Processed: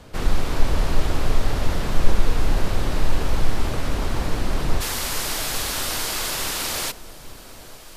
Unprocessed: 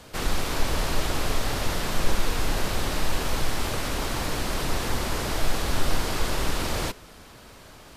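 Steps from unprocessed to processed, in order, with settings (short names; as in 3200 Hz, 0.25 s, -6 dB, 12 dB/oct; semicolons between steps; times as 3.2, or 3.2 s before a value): tilt -1.5 dB/oct, from 4.8 s +3 dB/oct; dark delay 0.852 s, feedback 56%, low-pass 710 Hz, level -13 dB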